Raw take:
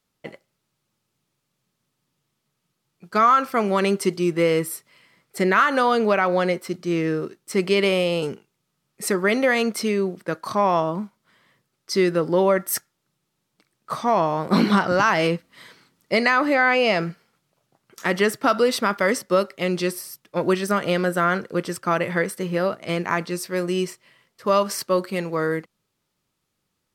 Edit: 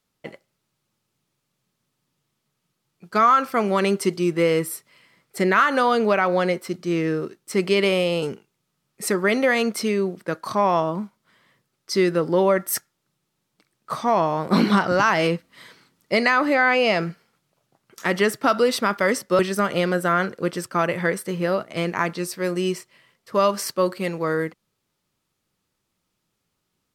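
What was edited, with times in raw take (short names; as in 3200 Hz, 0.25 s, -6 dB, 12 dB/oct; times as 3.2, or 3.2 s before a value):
19.39–20.51 cut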